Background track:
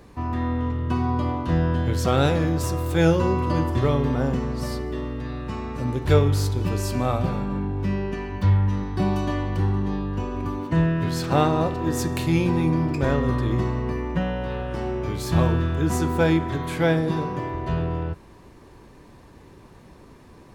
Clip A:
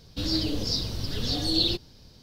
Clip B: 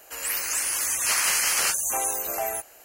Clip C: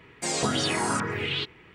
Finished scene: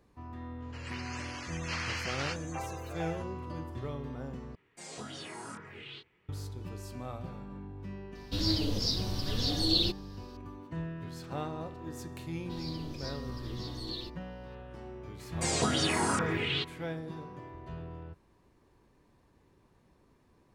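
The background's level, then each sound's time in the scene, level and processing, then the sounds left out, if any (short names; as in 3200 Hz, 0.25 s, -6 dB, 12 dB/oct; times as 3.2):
background track -17.5 dB
0.62 add B -9.5 dB + LPF 4700 Hz 24 dB/oct
4.55 replace with C -14.5 dB + chorus 1.8 Hz
8.15 add A -3 dB
12.33 add A -16.5 dB
15.19 add C -3 dB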